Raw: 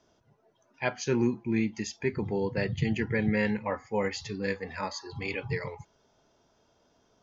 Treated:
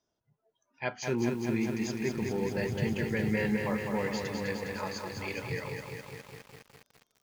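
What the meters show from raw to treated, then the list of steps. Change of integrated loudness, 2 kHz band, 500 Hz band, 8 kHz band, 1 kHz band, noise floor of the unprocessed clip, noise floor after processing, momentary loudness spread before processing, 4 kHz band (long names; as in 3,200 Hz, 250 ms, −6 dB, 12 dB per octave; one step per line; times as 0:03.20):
−1.5 dB, −2.0 dB, −1.5 dB, can't be measured, −1.5 dB, −69 dBFS, −82 dBFS, 8 LU, −1.5 dB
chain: noise reduction from a noise print of the clip's start 12 dB
feedback echo at a low word length 205 ms, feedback 80%, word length 8 bits, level −4.5 dB
level −4 dB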